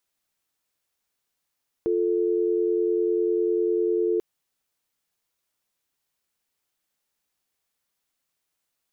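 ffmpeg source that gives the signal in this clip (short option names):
-f lavfi -i "aevalsrc='0.0708*(sin(2*PI*350*t)+sin(2*PI*440*t))':d=2.34:s=44100"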